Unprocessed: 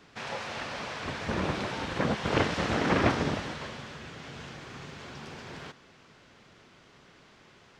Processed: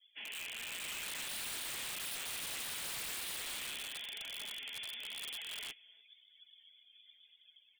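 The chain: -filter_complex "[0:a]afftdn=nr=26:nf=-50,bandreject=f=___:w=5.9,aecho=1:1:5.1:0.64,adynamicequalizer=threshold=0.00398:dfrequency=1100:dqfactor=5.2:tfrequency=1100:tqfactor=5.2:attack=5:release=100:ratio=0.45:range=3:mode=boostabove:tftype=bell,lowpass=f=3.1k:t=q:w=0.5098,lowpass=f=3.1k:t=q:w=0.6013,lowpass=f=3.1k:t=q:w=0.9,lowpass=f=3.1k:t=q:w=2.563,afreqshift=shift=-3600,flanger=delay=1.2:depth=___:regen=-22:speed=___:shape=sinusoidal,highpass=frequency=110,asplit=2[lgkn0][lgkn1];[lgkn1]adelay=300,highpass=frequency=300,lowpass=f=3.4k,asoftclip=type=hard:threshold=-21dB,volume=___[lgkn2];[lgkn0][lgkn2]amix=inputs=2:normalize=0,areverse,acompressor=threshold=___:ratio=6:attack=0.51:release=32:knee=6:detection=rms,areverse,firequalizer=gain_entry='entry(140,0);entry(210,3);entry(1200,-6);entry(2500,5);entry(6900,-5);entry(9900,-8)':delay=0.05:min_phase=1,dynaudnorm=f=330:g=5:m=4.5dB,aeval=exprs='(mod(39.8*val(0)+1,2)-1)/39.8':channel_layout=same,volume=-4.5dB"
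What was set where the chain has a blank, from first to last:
2.4k, 8.5, 0.93, -25dB, -38dB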